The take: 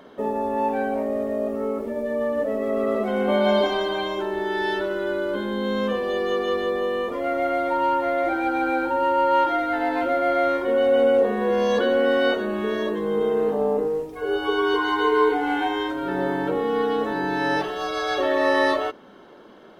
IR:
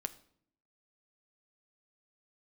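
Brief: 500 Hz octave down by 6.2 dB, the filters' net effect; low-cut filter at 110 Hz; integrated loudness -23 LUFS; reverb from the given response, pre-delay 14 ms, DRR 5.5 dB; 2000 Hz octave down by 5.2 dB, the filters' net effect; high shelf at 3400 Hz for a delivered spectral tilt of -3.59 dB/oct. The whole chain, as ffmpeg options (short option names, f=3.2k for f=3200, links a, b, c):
-filter_complex "[0:a]highpass=110,equalizer=f=500:t=o:g=-7,equalizer=f=2k:t=o:g=-5.5,highshelf=f=3.4k:g=-4.5,asplit=2[a][b];[1:a]atrim=start_sample=2205,adelay=14[c];[b][c]afir=irnorm=-1:irlink=0,volume=-4.5dB[d];[a][d]amix=inputs=2:normalize=0,volume=4dB"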